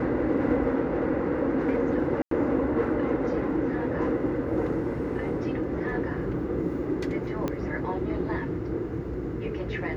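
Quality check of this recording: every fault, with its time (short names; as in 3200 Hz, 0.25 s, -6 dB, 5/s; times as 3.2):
2.22–2.31 gap 93 ms
7.48 pop -16 dBFS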